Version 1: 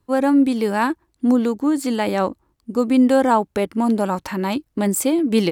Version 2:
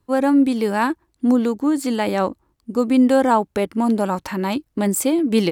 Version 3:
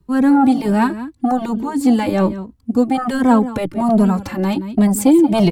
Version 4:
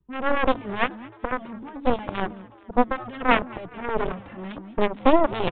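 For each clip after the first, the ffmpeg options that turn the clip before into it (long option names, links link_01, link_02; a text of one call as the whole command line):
ffmpeg -i in.wav -af anull out.wav
ffmpeg -i in.wav -filter_complex "[0:a]aecho=1:1:174:0.168,acrossover=split=280|1400[link_01][link_02][link_03];[link_01]aeval=exprs='0.251*sin(PI/2*3.16*val(0)/0.251)':channel_layout=same[link_04];[link_04][link_02][link_03]amix=inputs=3:normalize=0,asplit=2[link_05][link_06];[link_06]adelay=2.8,afreqshift=1.3[link_07];[link_05][link_07]amix=inputs=2:normalize=1,volume=2.5dB" out.wav
ffmpeg -i in.wav -filter_complex "[0:a]aeval=exprs='0.841*(cos(1*acos(clip(val(0)/0.841,-1,1)))-cos(1*PI/2))+0.211*(cos(2*acos(clip(val(0)/0.841,-1,1)))-cos(2*PI/2))+0.335*(cos(3*acos(clip(val(0)/0.841,-1,1)))-cos(3*PI/2))+0.0944*(cos(6*acos(clip(val(0)/0.841,-1,1)))-cos(6*PI/2))+0.075*(cos(8*acos(clip(val(0)/0.841,-1,1)))-cos(8*PI/2))':channel_layout=same,asplit=6[link_01][link_02][link_03][link_04][link_05][link_06];[link_02]adelay=215,afreqshift=110,volume=-23.5dB[link_07];[link_03]adelay=430,afreqshift=220,volume=-27.5dB[link_08];[link_04]adelay=645,afreqshift=330,volume=-31.5dB[link_09];[link_05]adelay=860,afreqshift=440,volume=-35.5dB[link_10];[link_06]adelay=1075,afreqshift=550,volume=-39.6dB[link_11];[link_01][link_07][link_08][link_09][link_10][link_11]amix=inputs=6:normalize=0,aresample=8000,aresample=44100" out.wav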